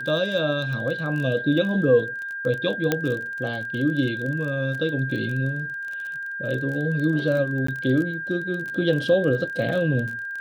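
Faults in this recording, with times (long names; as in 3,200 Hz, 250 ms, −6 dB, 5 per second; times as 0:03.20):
surface crackle 27 per second −29 dBFS
whistle 1,600 Hz −29 dBFS
0:02.92: click −7 dBFS
0:07.67–0:07.68: drop-out 14 ms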